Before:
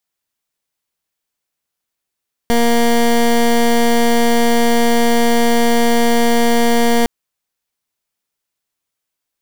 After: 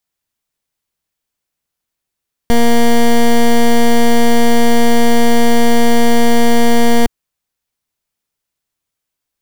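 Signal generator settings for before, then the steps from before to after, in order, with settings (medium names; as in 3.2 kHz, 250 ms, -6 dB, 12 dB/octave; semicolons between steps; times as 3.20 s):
pulse 235 Hz, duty 18% -12 dBFS 4.56 s
bass shelf 170 Hz +7.5 dB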